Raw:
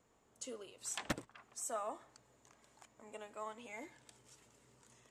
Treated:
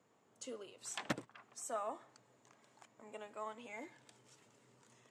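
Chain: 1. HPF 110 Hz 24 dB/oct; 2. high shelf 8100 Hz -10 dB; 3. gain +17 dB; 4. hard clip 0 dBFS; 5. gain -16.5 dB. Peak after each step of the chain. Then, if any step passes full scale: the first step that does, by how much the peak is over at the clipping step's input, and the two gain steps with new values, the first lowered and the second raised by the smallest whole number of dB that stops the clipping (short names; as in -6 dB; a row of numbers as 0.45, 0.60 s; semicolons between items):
-22.0, -22.5, -5.5, -5.5, -22.0 dBFS; no overload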